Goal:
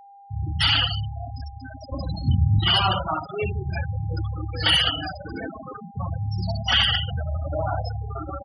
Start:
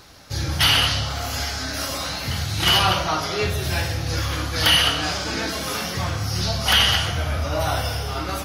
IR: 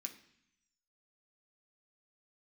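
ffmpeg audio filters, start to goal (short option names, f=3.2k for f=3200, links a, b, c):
-filter_complex "[0:a]asettb=1/sr,asplit=3[a][b][c];[a]atrim=end=1.924[d];[b]atrim=start=1.92:end=2.59,asetpts=PTS-STARTPTS,afade=t=in:d=0.004:c=qsin,afade=t=out:st=0.666:d=0.004:c=qsin,lowshelf=f=400:g=10.5[e];[c]atrim=start=2.586[f];[d][e]acrossfade=d=0.004:c1=hsin:c2=qsin[g];[g][f]acrossfade=d=0.004:c1=qsin:c2=hsin,aecho=1:1:67|134|201:0.316|0.0569|0.0102,afftfilt=real='re*gte(hypot(re,im),0.178)':imag='im*gte(hypot(re,im),0.178)':win_size=1024:overlap=0.75,aeval=exprs='val(0)+0.00708*sin(2*PI*800*n/s)':c=same,volume=-2dB"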